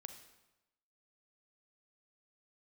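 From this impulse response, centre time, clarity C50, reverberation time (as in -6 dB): 16 ms, 8.5 dB, 1.0 s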